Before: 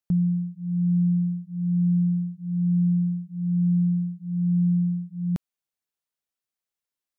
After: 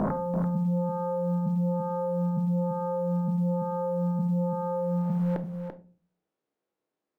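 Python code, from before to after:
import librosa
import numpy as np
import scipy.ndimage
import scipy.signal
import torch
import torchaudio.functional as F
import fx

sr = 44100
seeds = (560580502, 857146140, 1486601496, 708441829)

p1 = fx.spec_swells(x, sr, rise_s=1.45)
p2 = fx.bandpass_q(p1, sr, hz=380.0, q=1.4)
p3 = fx.fold_sine(p2, sr, drive_db=18, ceiling_db=-18.0)
p4 = p2 + F.gain(torch.from_numpy(p3), -8.0).numpy()
p5 = fx.quant_float(p4, sr, bits=6)
p6 = p5 + fx.echo_single(p5, sr, ms=338, db=-7.0, dry=0)
y = fx.room_shoebox(p6, sr, seeds[0], volume_m3=250.0, walls='furnished', distance_m=0.58)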